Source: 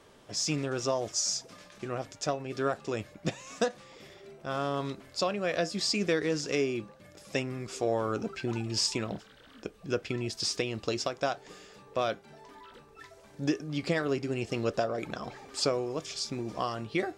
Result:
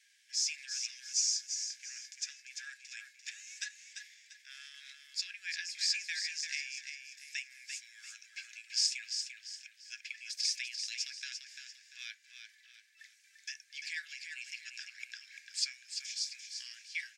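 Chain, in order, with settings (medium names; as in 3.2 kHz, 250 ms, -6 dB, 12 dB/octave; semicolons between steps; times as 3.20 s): rippled Chebyshev high-pass 1.6 kHz, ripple 6 dB; on a send: feedback delay 344 ms, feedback 35%, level -7 dB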